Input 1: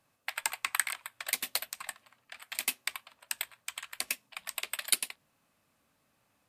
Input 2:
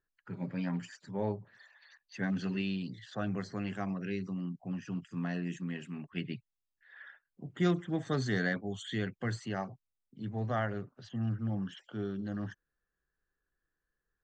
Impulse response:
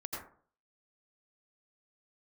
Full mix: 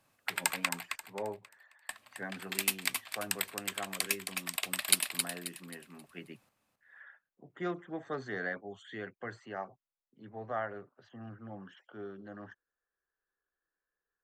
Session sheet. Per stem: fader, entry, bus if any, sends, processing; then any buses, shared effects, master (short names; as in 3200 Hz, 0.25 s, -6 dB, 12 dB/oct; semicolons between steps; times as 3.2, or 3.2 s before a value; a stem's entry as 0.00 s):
+1.5 dB, 0.00 s, muted 0.69–1.89, no send, echo send -7 dB, dry
-0.5 dB, 0.00 s, no send, no echo send, three-band isolator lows -16 dB, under 360 Hz, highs -15 dB, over 2200 Hz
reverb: off
echo: feedback echo 0.267 s, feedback 34%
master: dry